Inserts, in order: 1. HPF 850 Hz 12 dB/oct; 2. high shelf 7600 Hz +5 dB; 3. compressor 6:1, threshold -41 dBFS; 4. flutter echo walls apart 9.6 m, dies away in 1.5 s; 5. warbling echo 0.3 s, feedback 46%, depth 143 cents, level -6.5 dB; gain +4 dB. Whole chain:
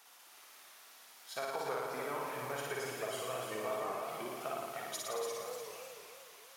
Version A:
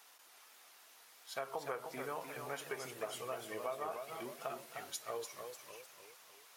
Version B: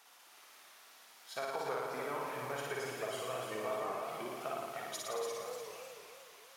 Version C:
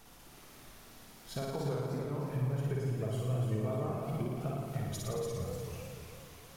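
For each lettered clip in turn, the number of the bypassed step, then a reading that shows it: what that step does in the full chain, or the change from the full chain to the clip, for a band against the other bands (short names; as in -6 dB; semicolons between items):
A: 4, crest factor change +3.5 dB; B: 2, 8 kHz band -2.0 dB; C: 1, 125 Hz band +26.0 dB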